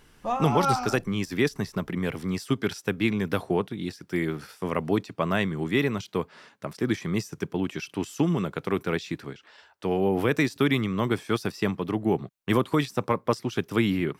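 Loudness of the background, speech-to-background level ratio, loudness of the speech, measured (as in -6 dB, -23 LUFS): -28.5 LUFS, 1.0 dB, -27.5 LUFS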